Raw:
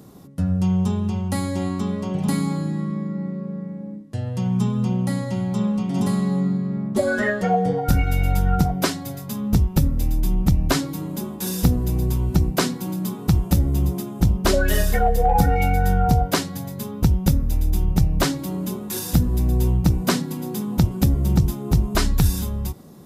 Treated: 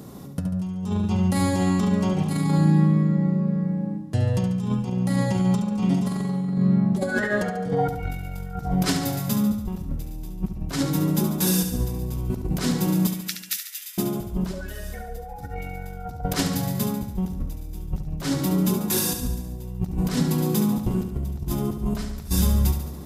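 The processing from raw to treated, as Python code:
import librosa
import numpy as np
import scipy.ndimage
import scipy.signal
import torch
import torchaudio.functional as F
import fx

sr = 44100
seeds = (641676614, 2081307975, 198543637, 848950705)

y = fx.steep_highpass(x, sr, hz=1600.0, slope=48, at=(13.07, 13.98))
y = fx.over_compress(y, sr, threshold_db=-24.0, ratio=-0.5)
y = fx.echo_feedback(y, sr, ms=71, feedback_pct=59, wet_db=-8.0)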